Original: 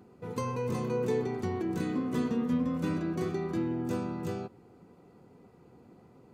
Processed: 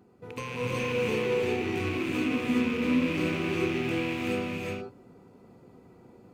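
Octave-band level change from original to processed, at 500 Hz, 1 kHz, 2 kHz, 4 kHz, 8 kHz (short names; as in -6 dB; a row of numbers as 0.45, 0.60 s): +3.5 dB, +2.0 dB, +13.5 dB, +13.0 dB, n/a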